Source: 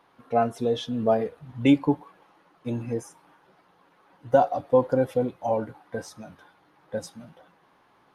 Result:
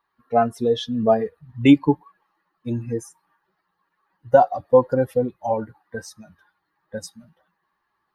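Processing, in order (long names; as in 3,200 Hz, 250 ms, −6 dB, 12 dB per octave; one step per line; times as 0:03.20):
spectral dynamics exaggerated over time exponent 1.5
level +6.5 dB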